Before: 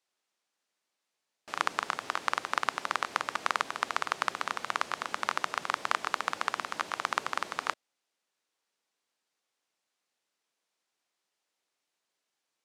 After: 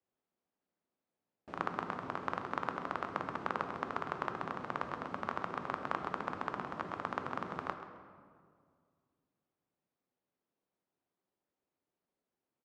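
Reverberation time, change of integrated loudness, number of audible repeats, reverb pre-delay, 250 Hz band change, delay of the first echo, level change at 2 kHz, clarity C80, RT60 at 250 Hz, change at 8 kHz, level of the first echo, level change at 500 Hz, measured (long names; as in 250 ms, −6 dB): 2.0 s, −7.0 dB, 1, 6 ms, +5.5 dB, 132 ms, −10.0 dB, 8.5 dB, 2.5 s, below −20 dB, −14.0 dB, 0.0 dB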